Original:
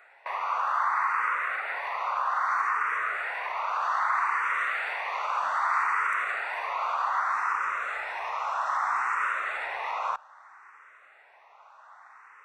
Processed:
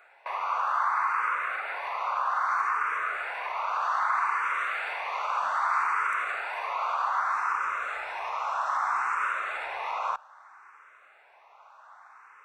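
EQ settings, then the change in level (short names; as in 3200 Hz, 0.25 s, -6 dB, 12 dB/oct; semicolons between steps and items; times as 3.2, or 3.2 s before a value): notch 1900 Hz, Q 8.8; 0.0 dB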